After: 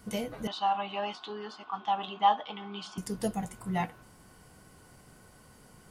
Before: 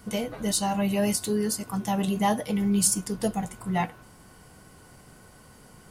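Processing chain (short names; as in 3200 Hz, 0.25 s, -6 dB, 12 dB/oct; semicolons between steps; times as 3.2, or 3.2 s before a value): 0.47–2.98 speaker cabinet 490–3600 Hz, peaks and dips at 510 Hz -10 dB, 830 Hz +9 dB, 1200 Hz +10 dB, 2000 Hz -6 dB, 3300 Hz +10 dB; gain -4.5 dB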